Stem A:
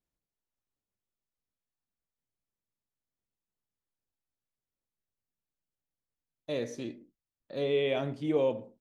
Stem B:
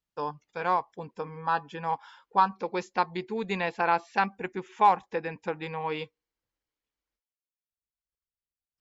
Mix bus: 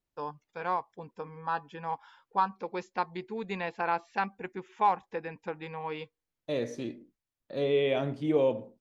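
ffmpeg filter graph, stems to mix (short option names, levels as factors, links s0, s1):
-filter_complex "[0:a]volume=1.26[s0];[1:a]volume=0.596[s1];[s0][s1]amix=inputs=2:normalize=0,highshelf=f=4700:g=-5.5"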